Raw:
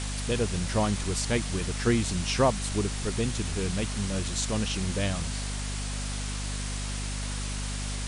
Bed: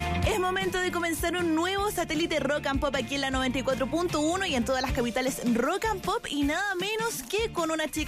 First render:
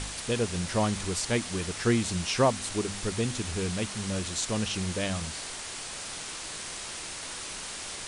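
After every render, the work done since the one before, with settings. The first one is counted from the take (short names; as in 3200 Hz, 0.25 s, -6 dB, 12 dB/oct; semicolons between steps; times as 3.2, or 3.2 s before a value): de-hum 50 Hz, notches 5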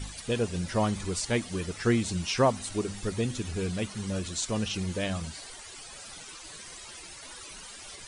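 denoiser 14 dB, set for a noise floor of -39 dBFS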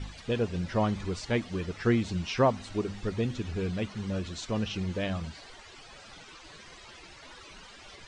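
air absorption 150 m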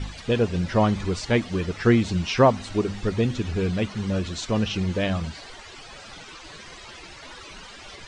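gain +7 dB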